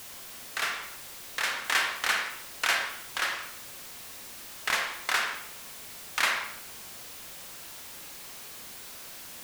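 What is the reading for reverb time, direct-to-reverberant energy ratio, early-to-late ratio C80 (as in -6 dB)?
not exponential, 3.0 dB, 8.0 dB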